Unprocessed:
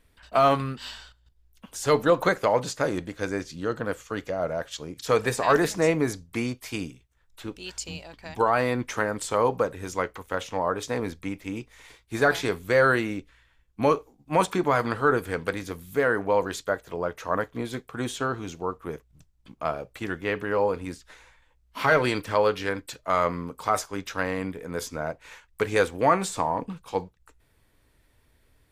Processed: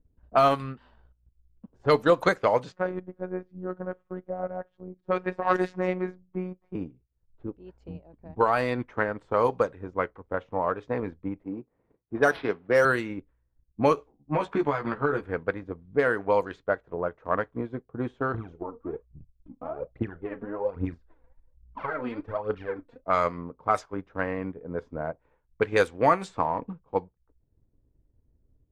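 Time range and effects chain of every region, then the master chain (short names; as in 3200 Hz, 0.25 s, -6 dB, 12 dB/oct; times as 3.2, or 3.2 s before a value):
2.72–6.75 high shelf 3600 Hz -10 dB + robotiser 183 Hz
11.43–12.85 HPF 160 Hz + decimation joined by straight lines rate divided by 6×
13.96–15.25 compressor 5:1, threshold -22 dBFS + doubler 14 ms -3 dB
18.34–23.04 compressor 4:1, threshold -29 dBFS + phaser 1.2 Hz, delay 4.4 ms, feedback 69% + doubler 35 ms -13 dB
whole clip: low-pass opened by the level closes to 330 Hz, open at -17 dBFS; transient shaper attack +3 dB, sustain -6 dB; gain -1.5 dB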